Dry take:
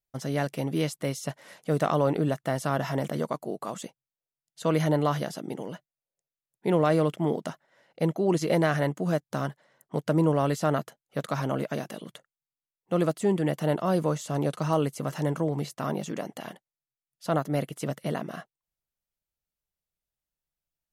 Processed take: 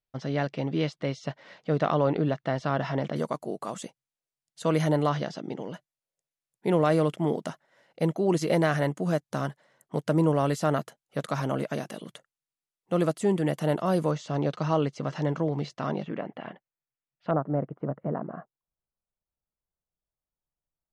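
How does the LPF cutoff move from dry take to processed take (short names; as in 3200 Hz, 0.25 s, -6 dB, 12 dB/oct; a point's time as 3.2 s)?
LPF 24 dB/oct
4800 Hz
from 3.16 s 11000 Hz
from 5.09 s 5800 Hz
from 5.74 s 12000 Hz
from 14.11 s 5500 Hz
from 16.03 s 2700 Hz
from 17.31 s 1300 Hz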